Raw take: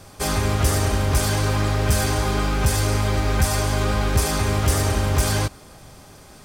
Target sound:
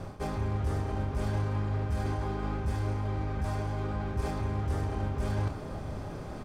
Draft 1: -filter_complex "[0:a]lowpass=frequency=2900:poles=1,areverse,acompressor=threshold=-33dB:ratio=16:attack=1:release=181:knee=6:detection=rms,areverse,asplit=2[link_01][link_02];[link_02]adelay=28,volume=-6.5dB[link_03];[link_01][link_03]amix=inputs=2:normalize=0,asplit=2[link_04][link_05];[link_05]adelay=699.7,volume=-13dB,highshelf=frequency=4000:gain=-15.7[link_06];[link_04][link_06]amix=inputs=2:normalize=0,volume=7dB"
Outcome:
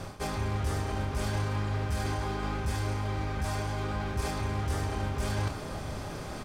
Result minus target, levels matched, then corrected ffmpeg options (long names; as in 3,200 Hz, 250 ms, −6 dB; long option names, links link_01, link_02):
4,000 Hz band +8.5 dB
-filter_complex "[0:a]lowpass=frequency=770:poles=1,areverse,acompressor=threshold=-33dB:ratio=16:attack=1:release=181:knee=6:detection=rms,areverse,asplit=2[link_01][link_02];[link_02]adelay=28,volume=-6.5dB[link_03];[link_01][link_03]amix=inputs=2:normalize=0,asplit=2[link_04][link_05];[link_05]adelay=699.7,volume=-13dB,highshelf=frequency=4000:gain=-15.7[link_06];[link_04][link_06]amix=inputs=2:normalize=0,volume=7dB"